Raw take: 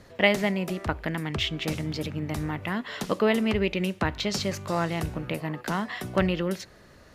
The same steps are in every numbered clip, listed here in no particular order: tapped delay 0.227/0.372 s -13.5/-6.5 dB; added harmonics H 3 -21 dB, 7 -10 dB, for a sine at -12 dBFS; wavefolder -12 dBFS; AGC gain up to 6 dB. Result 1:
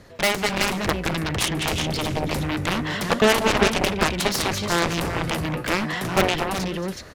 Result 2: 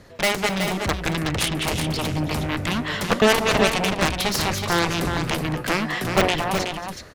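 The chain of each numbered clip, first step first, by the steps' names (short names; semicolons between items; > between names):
wavefolder > tapped delay > added harmonics > AGC; added harmonics > wavefolder > AGC > tapped delay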